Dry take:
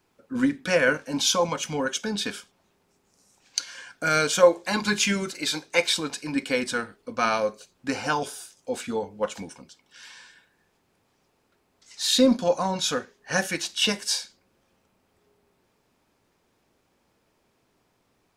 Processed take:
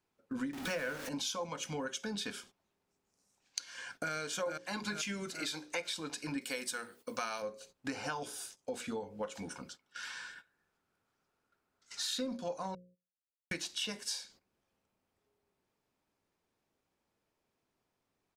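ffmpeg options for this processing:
-filter_complex "[0:a]asettb=1/sr,asplit=3[a][b][c];[a]atrim=end=0.534[d];[b]atrim=start=0.53:end=1.09,asetpts=PTS-STARTPTS,afade=t=in:d=0.004:c=qsin,afade=t=out:st=0.556:d=0.004:c=qsin,aeval=exprs='val(0)+0.5*0.0501*sgn(val(0))':c=same[e];[c]atrim=start=1.086[f];[d][e]acrossfade=d=0.004:c1=hsin:c2=qsin[g];[g][f]acrossfade=d=0.004:c1=qsin:c2=hsin,asplit=2[h][i];[i]afade=t=in:st=3.62:d=0.01,afade=t=out:st=4.13:d=0.01,aecho=0:1:440|880|1320|1760|2200:0.944061|0.377624|0.15105|0.0604199|0.024168[j];[h][j]amix=inputs=2:normalize=0,asettb=1/sr,asplit=3[k][l][m];[k]atrim=end=6.414[n];[l]atrim=start=6.41:end=7.42,asetpts=PTS-STARTPTS,afade=t=in:d=0.004:c=qsin,afade=t=out:st=1.006:d=0.004:c=qsin,aemphasis=mode=production:type=bsi[o];[m]atrim=start=7.416[p];[n][o]acrossfade=d=0.004:c1=hsin:c2=qsin[q];[q][p]acrossfade=d=0.004:c1=qsin:c2=hsin,asettb=1/sr,asplit=3[r][s][t];[r]atrim=end=9.454[u];[s]atrim=start=9.45:end=12.25,asetpts=PTS-STARTPTS,afade=t=in:d=0.004:c=qsin,afade=t=out:st=2.796:d=0.004:c=qsin,equalizer=f=1.4k:t=o:w=0.33:g=11.5[v];[t]atrim=start=12.246[w];[u][v]acrossfade=d=0.004:c1=hsin:c2=qsin[x];[x][w]acrossfade=d=0.004:c1=qsin:c2=hsin,asplit=3[y][z][aa];[y]atrim=end=12.75,asetpts=PTS-STARTPTS,afade=t=out:st=12.746:d=0.004:c=hsin[ab];[z]atrim=start=12.75:end=13.51,asetpts=PTS-STARTPTS,volume=0[ac];[aa]atrim=start=13.51,asetpts=PTS-STARTPTS,afade=t=in:d=0.004:c=hsin[ad];[ab][ac][ad]concat=n=3:v=0:a=1,bandreject=f=60:t=h:w=6,bandreject=f=120:t=h:w=6,bandreject=f=180:t=h:w=6,bandreject=f=240:t=h:w=6,bandreject=f=300:t=h:w=6,bandreject=f=360:t=h:w=6,bandreject=f=420:t=h:w=6,bandreject=f=480:t=h:w=6,bandreject=f=540:t=h:w=6,agate=range=-14dB:threshold=-50dB:ratio=16:detection=peak,acompressor=threshold=-37dB:ratio=5"

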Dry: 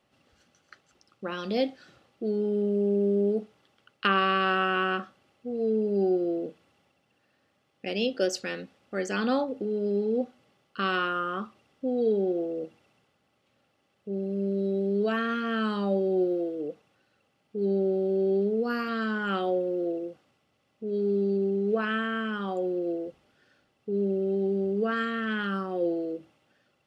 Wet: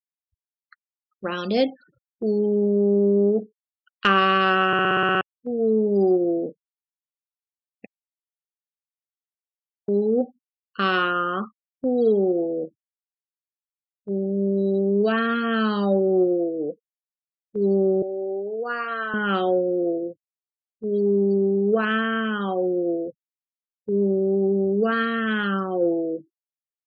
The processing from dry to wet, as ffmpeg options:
-filter_complex "[0:a]asettb=1/sr,asplit=3[a][b][c];[a]atrim=end=18.024[d];[b]atrim=start=18.02:end=19.14,asetpts=PTS-STARTPTS,afade=t=in:d=0.004:c=qsin,afade=t=out:st=1.116:d=0.004:c=qsin,acrossover=split=480 2800:gain=0.0708 1 0.251[e][f][g];[e][f][g]amix=inputs=3:normalize=0[h];[c]atrim=start=19.136[i];[d][h]acrossfade=d=0.004:c1=hsin:c2=qsin[j];[j][i]acrossfade=d=0.004:c1=qsin:c2=hsin,asplit=12[k][l][m][n][o][p][q][r][s][t][u][v];[k]atrim=end=4.732[w];[l]atrim=start=4.668:end=4.732[x];[m]atrim=start=4.668:end=4.732[y];[n]atrim=start=4.668:end=4.732[z];[o]atrim=start=4.668:end=4.732[aa];[p]atrim=start=4.668:end=4.732[ab];[q]atrim=start=4.668:end=4.732[ac];[r]atrim=start=4.668:end=4.732[ad];[s]atrim=start=4.668:end=4.732[ae];[t]atrim=start=5.208:end=7.86,asetpts=PTS-STARTPTS,afade=t=out:st=2.648:d=0.004:c=hsin[af];[u]atrim=start=7.86:end=9.88,asetpts=PTS-STARTPTS,volume=0[ag];[v]atrim=start=9.88,asetpts=PTS-STARTPTS,afade=t=in:d=0.004:c=hsin[ah];[w][x]acrossfade=d=0.004:c1=hsin:c2=hsin[ai];[ai][y]acrossfade=d=0.004:c1=hsin:c2=hsin[aj];[aj][z]acrossfade=d=0.004:c1=hsin:c2=hsin[ak];[ak][aa]acrossfade=d=0.004:c1=hsin:c2=hsin[al];[al][ab]acrossfade=d=0.004:c1=hsin:c2=hsin[am];[am][ac]acrossfade=d=0.004:c1=hsin:c2=hsin[an];[an][ad]acrossfade=d=0.004:c1=hsin:c2=hsin[ao];[ao][ae]acrossfade=d=0.004:c1=hsin:c2=hsin[ap];[af][ag][ah]concat=n=3:v=0:a=1[aq];[ap][aq]acrossfade=d=0.004:c1=hsin:c2=hsin,afftfilt=real='re*gte(hypot(re,im),0.00631)':imag='im*gte(hypot(re,im),0.00631)':win_size=1024:overlap=0.75,agate=range=-7dB:threshold=-38dB:ratio=16:detection=peak,acontrast=54"

